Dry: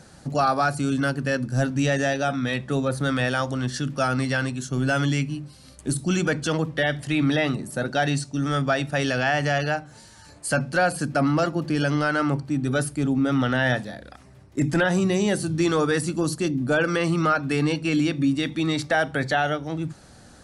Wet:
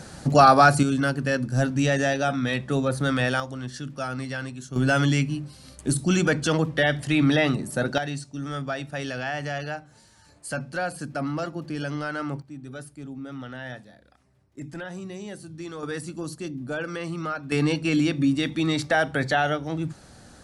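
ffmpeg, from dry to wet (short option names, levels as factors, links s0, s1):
-af "asetnsamples=n=441:p=0,asendcmd='0.83 volume volume 0dB;3.4 volume volume -7.5dB;4.76 volume volume 1.5dB;7.98 volume volume -7.5dB;12.42 volume volume -15dB;15.83 volume volume -9dB;17.52 volume volume 0dB',volume=2.24"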